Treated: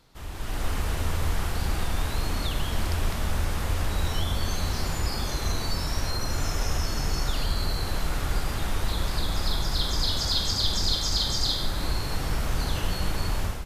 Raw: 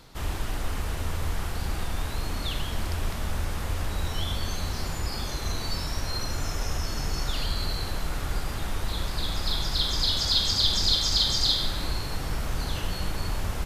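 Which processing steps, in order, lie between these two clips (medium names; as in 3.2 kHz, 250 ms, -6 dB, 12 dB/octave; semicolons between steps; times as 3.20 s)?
dynamic bell 3.4 kHz, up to -6 dB, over -38 dBFS, Q 1; level rider gain up to 12 dB; trim -9 dB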